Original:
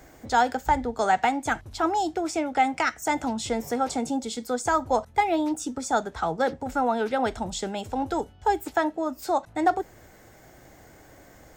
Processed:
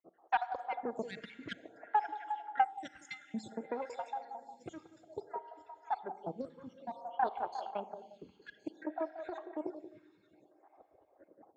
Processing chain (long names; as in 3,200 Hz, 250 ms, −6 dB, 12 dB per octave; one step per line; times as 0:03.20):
time-frequency cells dropped at random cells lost 77%
low-pass that shuts in the quiet parts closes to 1,200 Hz, open at −26.5 dBFS
noise gate −53 dBFS, range −8 dB
bass and treble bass −12 dB, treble −14 dB
notch filter 1,500 Hz, Q 12
downward compressor 2 to 1, threshold −44 dBFS, peak gain reduction 14.5 dB
rotating-speaker cabinet horn 5 Hz, later 0.65 Hz, at 0:02.26
echo through a band-pass that steps 178 ms, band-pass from 510 Hz, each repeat 0.7 octaves, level −5 dB
four-comb reverb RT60 2.6 s, combs from 33 ms, DRR 11.5 dB
harmonic generator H 4 −10 dB, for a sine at −18 dBFS
loudspeaker in its box 120–9,600 Hz, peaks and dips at 180 Hz +5 dB, 440 Hz −4 dB, 880 Hz +4 dB, 1,900 Hz −5 dB, 8,100 Hz +4 dB
phaser with staggered stages 0.57 Hz
level +6.5 dB